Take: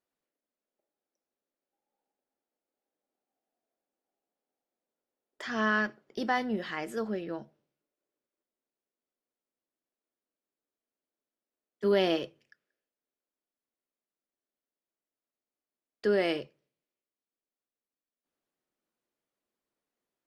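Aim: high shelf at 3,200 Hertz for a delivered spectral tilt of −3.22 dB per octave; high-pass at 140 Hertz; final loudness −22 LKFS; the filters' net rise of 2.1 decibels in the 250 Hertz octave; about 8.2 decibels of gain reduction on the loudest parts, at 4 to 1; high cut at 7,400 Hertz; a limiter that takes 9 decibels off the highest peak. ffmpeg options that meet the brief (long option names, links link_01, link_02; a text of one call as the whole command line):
ffmpeg -i in.wav -af "highpass=140,lowpass=7400,equalizer=frequency=250:width_type=o:gain=3.5,highshelf=frequency=3200:gain=4,acompressor=threshold=-30dB:ratio=4,volume=17.5dB,alimiter=limit=-11.5dB:level=0:latency=1" out.wav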